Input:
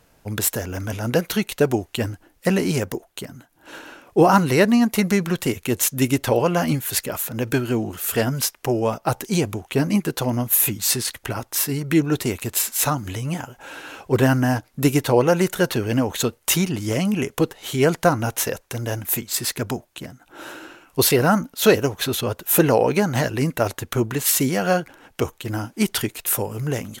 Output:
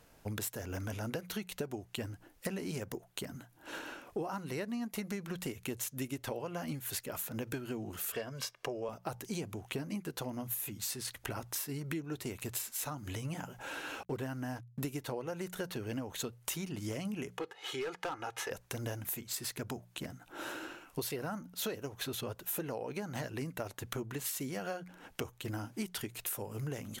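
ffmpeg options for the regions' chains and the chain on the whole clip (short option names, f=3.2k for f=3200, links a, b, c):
-filter_complex "[0:a]asettb=1/sr,asplit=3[a][b][c];[a]atrim=end=8.124[d];[b]atrim=start=8.12:end=8.89,asetpts=PTS-STARTPTS,afade=t=in:d=0.004:c=qsin,afade=t=out:st=0.766:d=0.004:c=qsin,acrossover=split=170 6400:gain=0.251 1 0.224[e][f][g];[e][f][g]amix=inputs=3:normalize=0,aecho=1:1:1.8:0.48,atrim=end_sample=33957[h];[c]atrim=start=8.886[i];[d][h]acrossfade=d=0.004:c1=hsin:c2=qsin[j];[j][i]acrossfade=d=0.004:c1=qsin:c2=hsin,asettb=1/sr,asplit=3[k][l][m];[k]atrim=end=14.034[n];[l]atrim=start=14.03:end=14.88,asetpts=PTS-STARTPTS,afade=t=in:d=0.004:c=qsin,afade=t=out:st=0.846:d=0.004:c=qsin,agate=range=-33dB:threshold=-47dB:ratio=3:release=100:detection=peak,aeval=exprs='sgn(val(0))*max(abs(val(0))-0.00376,0)':c=same[o];[m]atrim=start=14.876[p];[n][o]acrossfade=d=0.004:c1=hsin:c2=qsin[q];[q][p]acrossfade=d=0.004:c1=qsin:c2=hsin,asettb=1/sr,asplit=3[r][s][t];[r]atrim=end=17.374[u];[s]atrim=start=17.37:end=18.51,asetpts=PTS-STARTPTS,afade=t=in:d=0.004:c=qsin,afade=t=out:st=1.136:d=0.004:c=qsin,bandpass=f=1.4k:t=q:w=0.65,aecho=1:1:2.4:0.61,atrim=end_sample=50274,volume=18.5dB,asoftclip=hard,volume=-18.5dB[v];[t]atrim=start=18.506[w];[u][v]acrossfade=d=0.004:c1=hsin:c2=qsin[x];[x][w]acrossfade=d=0.004:c1=qsin:c2=hsin,bandreject=f=60:t=h:w=6,bandreject=f=120:t=h:w=6,bandreject=f=180:t=h:w=6,acompressor=threshold=-31dB:ratio=10,volume=-4.5dB"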